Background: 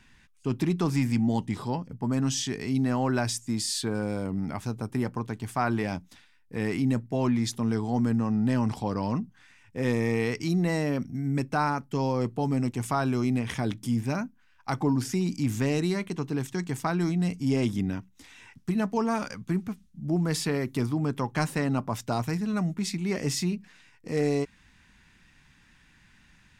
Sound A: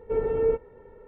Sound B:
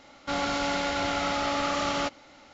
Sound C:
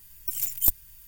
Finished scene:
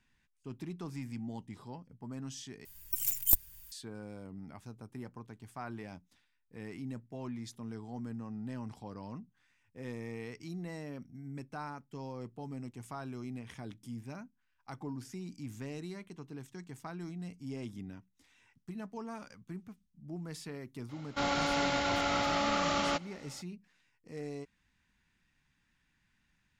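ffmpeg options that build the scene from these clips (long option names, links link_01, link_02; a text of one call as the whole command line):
ffmpeg -i bed.wav -i cue0.wav -i cue1.wav -i cue2.wav -filter_complex "[0:a]volume=-16dB,asplit=2[link_01][link_02];[link_01]atrim=end=2.654[link_03];[3:a]atrim=end=1.07,asetpts=PTS-STARTPTS,volume=-3.5dB[link_04];[link_02]atrim=start=3.716[link_05];[2:a]atrim=end=2.53,asetpts=PTS-STARTPTS,volume=-3dB,afade=type=in:duration=0.004:curve=hsin,afade=type=out:start_time=2.526:duration=0.004:curve=hsin,adelay=20890[link_06];[link_03][link_04]acrossfade=duration=0.004:curve1=hsin:curve2=hsin[link_07];[link_07][link_05]acrossfade=duration=0.004:curve1=hsin:curve2=hsin[link_08];[link_08][link_06]amix=inputs=2:normalize=0" out.wav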